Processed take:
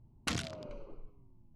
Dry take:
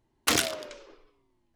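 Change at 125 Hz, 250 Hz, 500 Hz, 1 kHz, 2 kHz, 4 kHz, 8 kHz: +1.5, -7.0, -11.0, -12.0, -11.5, -12.5, -15.5 dB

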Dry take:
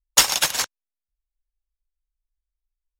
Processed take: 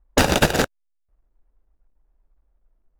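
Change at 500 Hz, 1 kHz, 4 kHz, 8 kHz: +14.5, +5.0, -5.0, -9.0 dB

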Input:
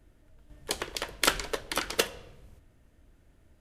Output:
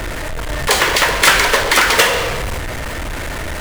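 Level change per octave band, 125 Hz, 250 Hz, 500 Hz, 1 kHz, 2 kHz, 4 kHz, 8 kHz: +23.5, +15.0, +17.0, +20.0, +21.5, +16.5, +16.5 dB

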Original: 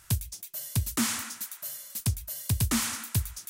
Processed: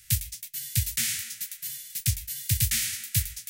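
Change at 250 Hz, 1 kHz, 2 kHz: -11.0 dB, under -15 dB, +1.5 dB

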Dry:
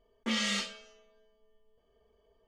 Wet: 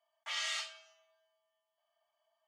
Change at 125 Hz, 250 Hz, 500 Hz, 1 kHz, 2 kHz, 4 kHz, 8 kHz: n/a, under -40 dB, -12.5 dB, -4.5 dB, -4.5 dB, -4.5 dB, -4.5 dB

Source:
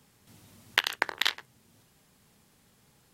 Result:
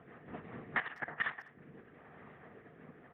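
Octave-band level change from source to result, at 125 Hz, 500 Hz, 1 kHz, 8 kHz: +5.0 dB, -4.0 dB, -6.5 dB, under -35 dB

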